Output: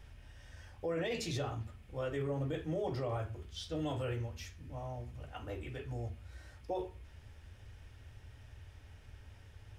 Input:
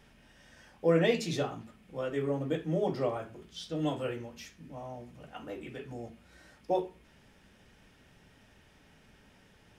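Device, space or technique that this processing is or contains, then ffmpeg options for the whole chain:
car stereo with a boomy subwoofer: -af "lowshelf=f=130:t=q:w=3:g=11,alimiter=level_in=1.41:limit=0.0631:level=0:latency=1:release=27,volume=0.708,volume=0.841"

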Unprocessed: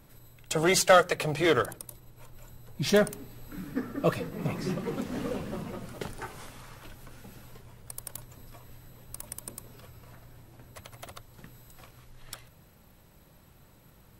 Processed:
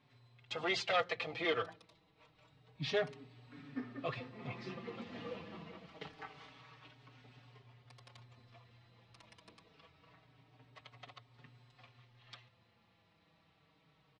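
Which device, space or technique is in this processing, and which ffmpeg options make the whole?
barber-pole flanger into a guitar amplifier: -filter_complex "[0:a]equalizer=f=66:w=0.61:g=-13,asplit=2[s0][s1];[s1]adelay=5.1,afreqshift=-0.26[s2];[s0][s2]amix=inputs=2:normalize=1,asoftclip=type=tanh:threshold=0.133,highpass=100,equalizer=f=120:t=q:w=4:g=5,equalizer=f=200:t=q:w=4:g=-9,equalizer=f=350:t=q:w=4:g=-10,equalizer=f=560:t=q:w=4:g=-9,equalizer=f=930:t=q:w=4:g=-4,equalizer=f=1500:t=q:w=4:g=-8,lowpass=f=4100:w=0.5412,lowpass=f=4100:w=1.3066,volume=0.841"

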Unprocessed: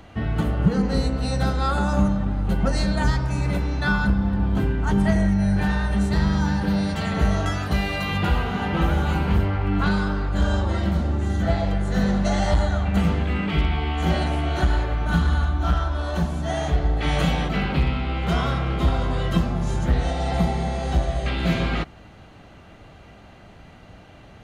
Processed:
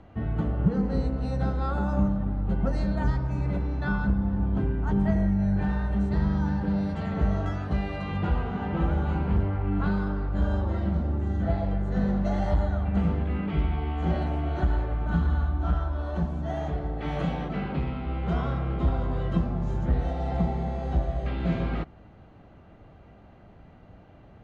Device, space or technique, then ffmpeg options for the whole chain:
through cloth: -filter_complex "[0:a]lowpass=7400,highshelf=f=2000:g=-16,asettb=1/sr,asplit=3[s0][s1][s2];[s0]atrim=end=16.704[s3];[s1]atrim=start=16.7:end=18.06,asetpts=PTS-STARTPTS,afade=t=in:d=0.004:c=qsin,afade=t=out:st=1.356:d=0.004:c=qsin,highpass=f=110:p=1[s4];[s2]atrim=start=18.056[s5];[s3][s4]acrossfade=d=0.004:c1=hsin:c2=qsin[s6];[s6][s5]acrossfade=d=0.004:c1=qsin:c2=hsin,volume=0.631"

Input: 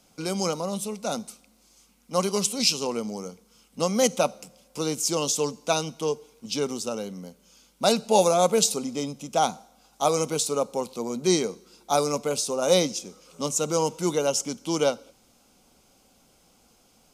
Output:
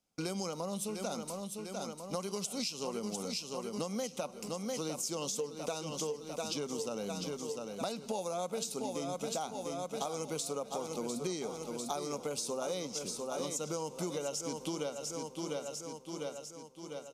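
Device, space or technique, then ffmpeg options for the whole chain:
serial compression, peaks first: -filter_complex "[0:a]agate=range=0.0708:threshold=0.00316:ratio=16:detection=peak,asettb=1/sr,asplit=3[s0][s1][s2];[s0]atrim=end=5.334[s3];[s1]atrim=start=5.33:end=5.75,asetpts=PTS-STARTPTS,afade=t=in:d=0.004:c=qsin,afade=t=out:st=0.416:d=0.004:c=qsin,equalizer=f=460:t=o:w=0.22:g=10.5[s4];[s2]atrim=start=5.746[s5];[s3][s4]acrossfade=d=0.004:c1=hsin:c2=qsin[s6];[s6][s5]acrossfade=d=0.004:c1=qsin:c2=hsin,aecho=1:1:699|1398|2097|2796|3495|4194:0.316|0.161|0.0823|0.0419|0.0214|0.0109,acompressor=threshold=0.0355:ratio=6,acompressor=threshold=0.0141:ratio=2"

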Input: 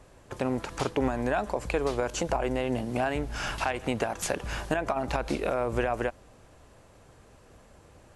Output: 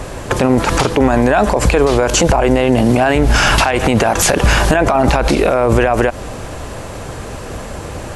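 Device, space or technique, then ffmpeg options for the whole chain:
loud club master: -af "acompressor=threshold=0.0316:ratio=2.5,asoftclip=type=hard:threshold=0.106,alimiter=level_in=31.6:limit=0.891:release=50:level=0:latency=1,volume=0.794"

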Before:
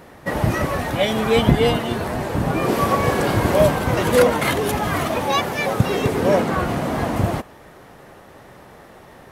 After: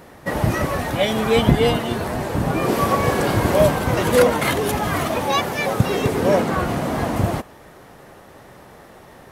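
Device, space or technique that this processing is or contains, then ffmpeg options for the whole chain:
exciter from parts: -filter_complex "[0:a]asplit=2[s0][s1];[s1]highpass=3400,asoftclip=type=tanh:threshold=0.02,volume=0.282[s2];[s0][s2]amix=inputs=2:normalize=0"

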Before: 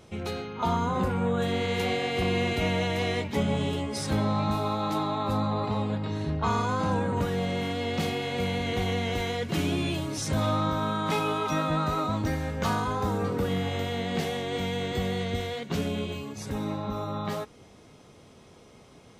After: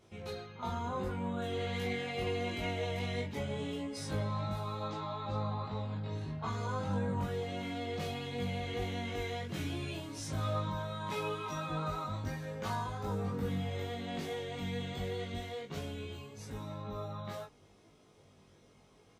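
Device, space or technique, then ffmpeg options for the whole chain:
double-tracked vocal: -filter_complex "[0:a]asettb=1/sr,asplit=3[s0][s1][s2];[s0]atrim=end=4.874[s3];[s1]atrim=start=4.87:end=6.05,asetpts=PTS-STARTPTS,afade=t=in:d=0.004:c=qsin,afade=t=out:st=1.176:d=0.004:c=qsin,lowpass=f=6800:w=0.5412,lowpass=f=6800:w=1.3066[s4];[s2]atrim=start=6.046[s5];[s3][s4]acrossfade=d=0.004:c1=hsin:c2=qsin[s6];[s6][s5]acrossfade=d=0.004:c1=qsin:c2=hsin,asplit=2[s7][s8];[s8]adelay=21,volume=0.708[s9];[s7][s9]amix=inputs=2:normalize=0,flanger=delay=18:depth=2.5:speed=0.78,volume=0.376"

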